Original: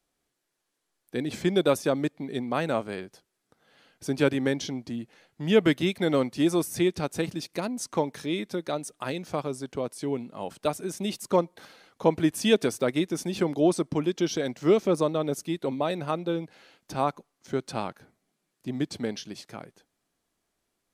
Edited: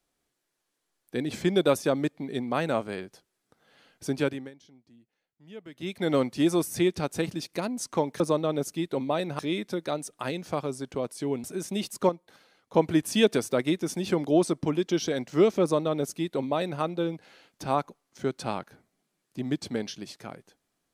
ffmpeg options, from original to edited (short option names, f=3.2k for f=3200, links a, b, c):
-filter_complex "[0:a]asplit=8[a][b][c][d][e][f][g][h];[a]atrim=end=4.51,asetpts=PTS-STARTPTS,afade=t=out:st=4.08:d=0.43:silence=0.0668344[i];[b]atrim=start=4.51:end=5.72,asetpts=PTS-STARTPTS,volume=-23.5dB[j];[c]atrim=start=5.72:end=8.202,asetpts=PTS-STARTPTS,afade=t=in:d=0.43:silence=0.0668344[k];[d]atrim=start=14.908:end=16.102[l];[e]atrim=start=8.198:end=10.252[m];[f]atrim=start=10.728:end=11.382[n];[g]atrim=start=11.378:end=12.032,asetpts=PTS-STARTPTS,volume=-8dB[o];[h]atrim=start=12.028[p];[i][j][k]concat=n=3:v=0:a=1[q];[q][l]acrossfade=d=0.004:c1=hsin:c2=hsin[r];[r][m]acrossfade=d=0.004:c1=hsin:c2=hsin[s];[s][n]acrossfade=d=0.004:c1=hsin:c2=hsin[t];[t][o]acrossfade=d=0.004:c1=hsin:c2=hsin[u];[u][p]acrossfade=d=0.004:c1=hsin:c2=hsin"